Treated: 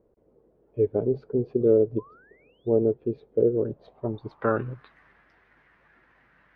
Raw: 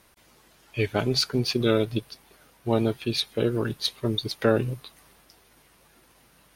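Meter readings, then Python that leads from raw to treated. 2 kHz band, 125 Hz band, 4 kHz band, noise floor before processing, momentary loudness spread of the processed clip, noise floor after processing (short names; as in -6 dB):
-8.0 dB, -4.5 dB, under -35 dB, -60 dBFS, 13 LU, -64 dBFS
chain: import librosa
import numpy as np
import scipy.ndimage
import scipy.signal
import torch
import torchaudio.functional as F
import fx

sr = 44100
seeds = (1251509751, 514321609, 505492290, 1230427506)

y = fx.spec_paint(x, sr, seeds[0], shape='rise', start_s=1.98, length_s=0.71, low_hz=960.0, high_hz=3800.0, level_db=-32.0)
y = fx.filter_sweep_lowpass(y, sr, from_hz=460.0, to_hz=1800.0, start_s=3.53, end_s=4.91, q=3.8)
y = F.gain(torch.from_numpy(y), -5.0).numpy()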